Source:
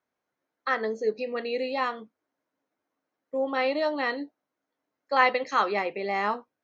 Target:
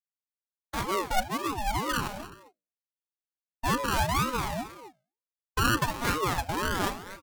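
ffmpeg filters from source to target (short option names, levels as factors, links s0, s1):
-af "lowpass=f=1000:w=0.5412,lowpass=f=1000:w=1.3066,aemphasis=mode=reproduction:type=riaa,agate=range=0.0224:threshold=0.0178:ratio=3:detection=peak,lowshelf=f=410:g=-7,bandreject=f=60:t=h:w=6,bandreject=f=120:t=h:w=6,bandreject=f=180:t=h:w=6,bandreject=f=240:t=h:w=6,bandreject=f=300:t=h:w=6,afreqshift=-28,acrusher=samples=22:mix=1:aa=0.000001:lfo=1:lforange=13.2:lforate=1.2,asoftclip=type=tanh:threshold=0.168,aecho=1:1:243:0.2,asetrate=40517,aresample=44100,aeval=exprs='val(0)*sin(2*PI*580*n/s+580*0.35/2.1*sin(2*PI*2.1*n/s))':c=same,volume=1.58"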